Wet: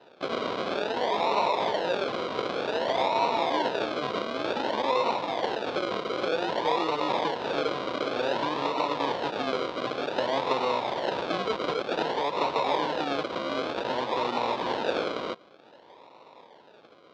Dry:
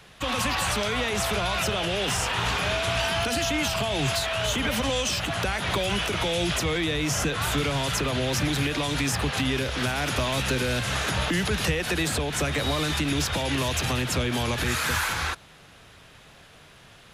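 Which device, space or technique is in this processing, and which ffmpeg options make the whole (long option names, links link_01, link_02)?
circuit-bent sampling toy: -af "acrusher=samples=39:mix=1:aa=0.000001:lfo=1:lforange=23.4:lforate=0.54,highpass=400,equalizer=frequency=510:width_type=q:width=4:gain=4,equalizer=frequency=960:width_type=q:width=4:gain=9,equalizer=frequency=1900:width_type=q:width=4:gain=-4,equalizer=frequency=3700:width_type=q:width=4:gain=5,lowpass=frequency=4500:width=0.5412,lowpass=frequency=4500:width=1.3066"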